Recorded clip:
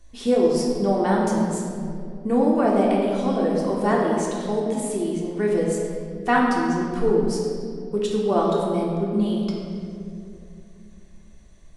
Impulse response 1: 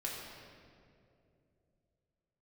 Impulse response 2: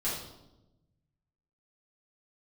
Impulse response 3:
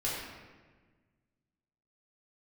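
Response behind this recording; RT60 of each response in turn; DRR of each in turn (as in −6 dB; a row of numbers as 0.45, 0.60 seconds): 1; 2.6, 0.95, 1.4 seconds; −4.5, −9.0, −8.0 decibels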